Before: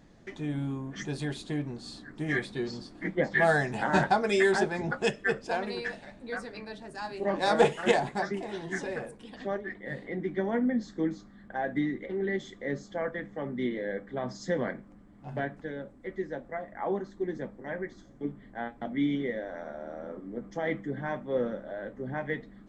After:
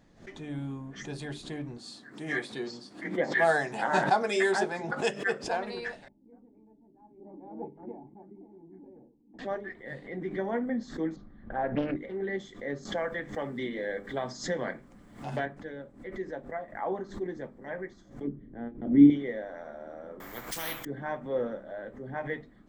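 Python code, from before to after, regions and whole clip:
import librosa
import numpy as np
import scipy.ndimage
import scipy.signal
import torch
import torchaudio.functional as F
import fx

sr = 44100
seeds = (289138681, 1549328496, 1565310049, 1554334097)

y = fx.chain(x, sr, fx.highpass(hz=180.0, slope=12),
    fx.high_shelf(hz=4200.0, db=5.0), at=(1.77, 5.44))
y = fx.chain(y, sr, fx.peak_eq(hz=780.0, db=-4.0, octaves=2.2),
    fx.gate_hold(open_db=-37.0, close_db=-46.0, hold_ms=71.0, range_db=-21, attack_ms=1.4, release_ms=100.0),
    fx.formant_cascade(vowel='u'), at=(6.08, 9.39))
y = fx.chain(y, sr, fx.lowpass(hz=4100.0, slope=12),
    fx.tilt_eq(slope=-2.5),
    fx.doppler_dist(depth_ms=0.57), at=(11.16, 11.96))
y = fx.chain(y, sr, fx.high_shelf(hz=2500.0, db=9.0),
    fx.band_squash(depth_pct=70), at=(12.85, 15.46))
y = fx.chain(y, sr, fx.lowpass(hz=1900.0, slope=6),
    fx.low_shelf_res(hz=530.0, db=12.5, q=1.5),
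    fx.upward_expand(threshold_db=-23.0, expansion=1.5), at=(18.27, 19.1))
y = fx.chain(y, sr, fx.high_shelf(hz=2700.0, db=10.0),
    fx.resample_bad(factor=3, down='none', up='hold'),
    fx.spectral_comp(ratio=4.0), at=(20.2, 20.85))
y = fx.hum_notches(y, sr, base_hz=50, count=8)
y = fx.dynamic_eq(y, sr, hz=810.0, q=0.73, threshold_db=-38.0, ratio=4.0, max_db=4)
y = fx.pre_swell(y, sr, db_per_s=140.0)
y = F.gain(torch.from_numpy(y), -3.5).numpy()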